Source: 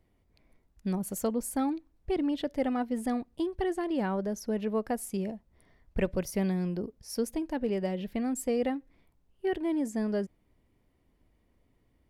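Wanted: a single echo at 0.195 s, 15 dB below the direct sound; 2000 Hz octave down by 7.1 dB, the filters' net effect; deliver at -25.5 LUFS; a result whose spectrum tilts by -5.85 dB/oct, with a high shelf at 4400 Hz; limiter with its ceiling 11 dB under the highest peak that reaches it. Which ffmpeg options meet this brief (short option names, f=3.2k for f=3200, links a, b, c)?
-af "equalizer=f=2k:t=o:g=-8,highshelf=f=4.4k:g=-5,alimiter=level_in=4dB:limit=-24dB:level=0:latency=1,volume=-4dB,aecho=1:1:195:0.178,volume=11.5dB"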